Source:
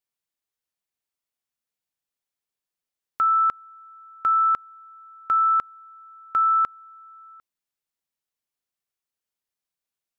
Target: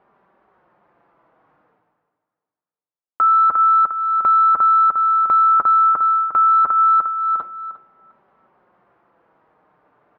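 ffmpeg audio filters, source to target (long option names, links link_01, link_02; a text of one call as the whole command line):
ffmpeg -i in.wav -af "flanger=delay=4.9:depth=1.9:regen=-31:speed=0.25:shape=triangular,agate=range=-33dB:threshold=-47dB:ratio=3:detection=peak,lowpass=frequency=1200:width=0.5412,lowpass=frequency=1200:width=1.3066,lowshelf=frequency=140:gain=-11.5,areverse,acompressor=mode=upward:threshold=-56dB:ratio=2.5,areverse,highpass=48,acontrast=51,aemphasis=mode=production:type=75kf,aecho=1:1:353|706|1059:0.158|0.0491|0.0152,alimiter=level_in=34dB:limit=-1dB:release=50:level=0:latency=1,volume=-9dB" out.wav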